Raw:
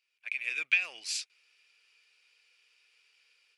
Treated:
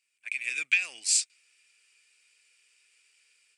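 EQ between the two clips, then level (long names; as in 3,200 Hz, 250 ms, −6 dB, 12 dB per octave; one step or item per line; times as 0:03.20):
parametric band 8,400 Hz +14.5 dB 0.58 octaves
dynamic equaliser 4,600 Hz, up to +5 dB, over −43 dBFS, Q 1.2
graphic EQ with 10 bands 125 Hz +6 dB, 250 Hz +9 dB, 2,000 Hz +6 dB, 8,000 Hz +8 dB
−5.0 dB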